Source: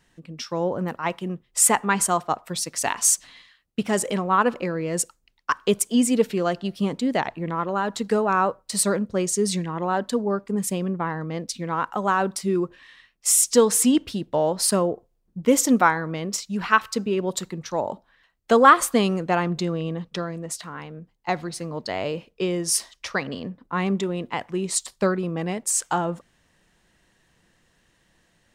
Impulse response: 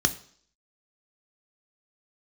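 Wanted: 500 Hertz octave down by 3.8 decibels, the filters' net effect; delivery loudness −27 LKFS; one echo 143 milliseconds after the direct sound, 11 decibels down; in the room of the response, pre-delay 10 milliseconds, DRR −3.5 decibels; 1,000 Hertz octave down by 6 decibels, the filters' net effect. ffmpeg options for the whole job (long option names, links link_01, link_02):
-filter_complex "[0:a]equalizer=frequency=500:width_type=o:gain=-3,equalizer=frequency=1000:width_type=o:gain=-7,aecho=1:1:143:0.282,asplit=2[link_01][link_02];[1:a]atrim=start_sample=2205,adelay=10[link_03];[link_02][link_03]afir=irnorm=-1:irlink=0,volume=-7.5dB[link_04];[link_01][link_04]amix=inputs=2:normalize=0,volume=-9dB"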